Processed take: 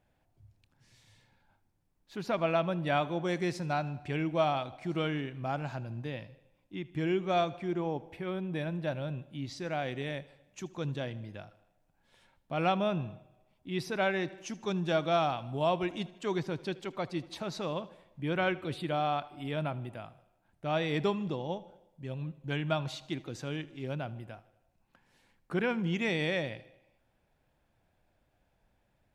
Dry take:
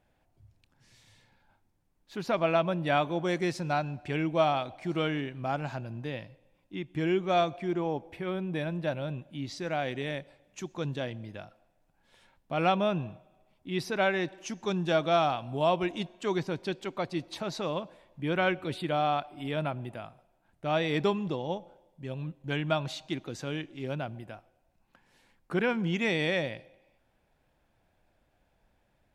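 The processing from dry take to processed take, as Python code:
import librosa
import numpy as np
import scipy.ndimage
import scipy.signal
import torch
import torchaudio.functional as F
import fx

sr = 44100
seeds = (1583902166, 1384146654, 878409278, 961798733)

p1 = fx.peak_eq(x, sr, hz=110.0, db=3.0, octaves=1.3)
p2 = p1 + fx.echo_feedback(p1, sr, ms=78, feedback_pct=55, wet_db=-20.5, dry=0)
y = F.gain(torch.from_numpy(p2), -3.0).numpy()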